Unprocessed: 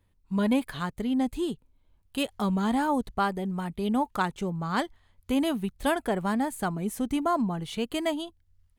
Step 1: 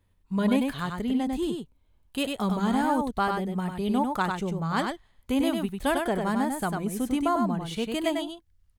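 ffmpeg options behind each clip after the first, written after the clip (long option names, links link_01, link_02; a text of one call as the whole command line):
ffmpeg -i in.wav -af "aecho=1:1:98:0.596" out.wav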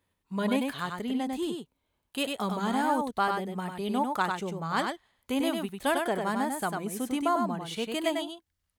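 ffmpeg -i in.wav -af "highpass=frequency=340:poles=1" out.wav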